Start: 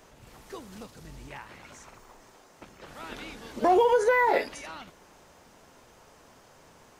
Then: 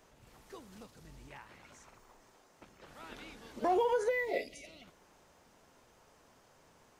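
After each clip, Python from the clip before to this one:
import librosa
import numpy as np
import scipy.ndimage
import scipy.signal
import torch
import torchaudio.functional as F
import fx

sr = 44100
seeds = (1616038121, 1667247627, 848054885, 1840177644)

y = fx.spec_box(x, sr, start_s=4.09, length_s=0.75, low_hz=740.0, high_hz=1900.0, gain_db=-20)
y = F.gain(torch.from_numpy(y), -8.5).numpy()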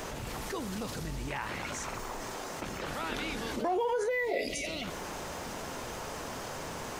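y = fx.env_flatten(x, sr, amount_pct=70)
y = F.gain(torch.from_numpy(y), -1.5).numpy()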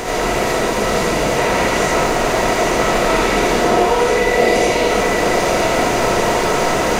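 y = fx.bin_compress(x, sr, power=0.4)
y = y + 10.0 ** (-5.0 / 20.0) * np.pad(y, (int(845 * sr / 1000.0), 0))[:len(y)]
y = fx.rev_freeverb(y, sr, rt60_s=1.1, hf_ratio=0.65, predelay_ms=30, drr_db=-7.0)
y = F.gain(torch.from_numpy(y), 3.5).numpy()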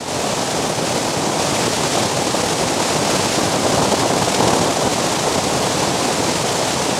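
y = fx.noise_vocoder(x, sr, seeds[0], bands=2)
y = F.gain(torch.from_numpy(y), -2.0).numpy()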